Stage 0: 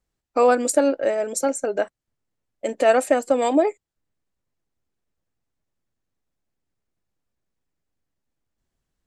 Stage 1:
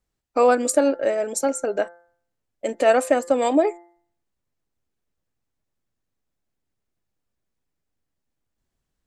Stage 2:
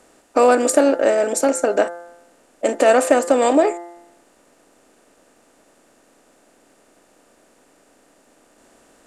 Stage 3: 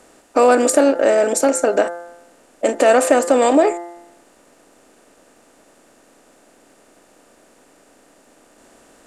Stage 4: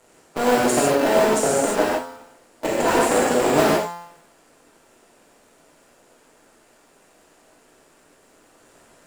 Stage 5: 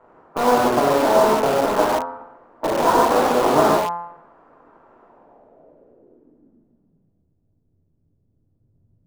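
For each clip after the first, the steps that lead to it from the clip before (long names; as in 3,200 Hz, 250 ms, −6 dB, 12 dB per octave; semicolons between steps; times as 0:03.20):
hum removal 172.4 Hz, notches 12
compressor on every frequency bin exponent 0.6; parametric band 100 Hz −15 dB 0.28 octaves; level +1.5 dB
in parallel at −1 dB: brickwall limiter −12 dBFS, peak gain reduction 10 dB; on the sum: every ending faded ahead of time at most 240 dB per second; level −2 dB
sub-harmonics by changed cycles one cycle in 2, muted; reverb whose tail is shaped and stops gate 180 ms flat, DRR −5.5 dB; level −6.5 dB
low-pass filter sweep 1,100 Hz → 110 Hz, 0:05.04–0:07.34; in parallel at −8 dB: wrap-around overflow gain 17.5 dB; on the sum: level −1 dB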